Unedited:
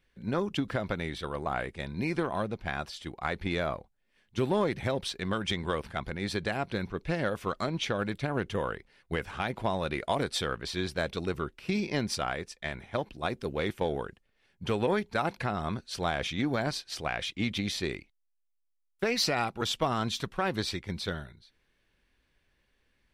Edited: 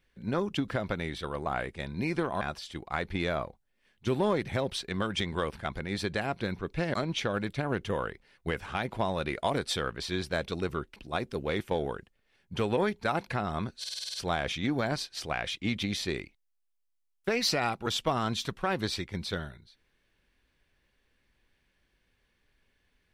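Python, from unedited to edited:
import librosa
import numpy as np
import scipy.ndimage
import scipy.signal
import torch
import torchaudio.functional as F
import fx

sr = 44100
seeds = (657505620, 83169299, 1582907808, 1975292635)

y = fx.edit(x, sr, fx.cut(start_s=2.41, length_s=0.31),
    fx.cut(start_s=7.25, length_s=0.34),
    fx.cut(start_s=11.61, length_s=1.45),
    fx.stutter(start_s=15.89, slice_s=0.05, count=8), tone=tone)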